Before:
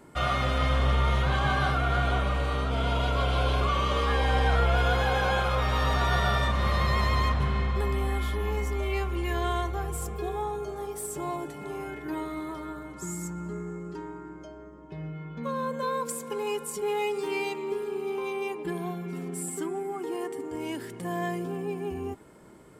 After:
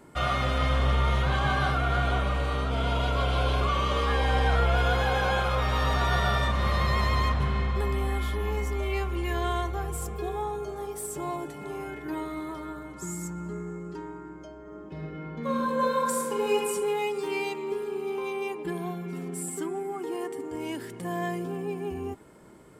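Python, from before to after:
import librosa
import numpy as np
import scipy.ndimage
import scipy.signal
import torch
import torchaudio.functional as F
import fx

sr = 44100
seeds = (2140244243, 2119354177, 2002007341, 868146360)

y = fx.reverb_throw(x, sr, start_s=14.61, length_s=2.09, rt60_s=1.5, drr_db=-3.0)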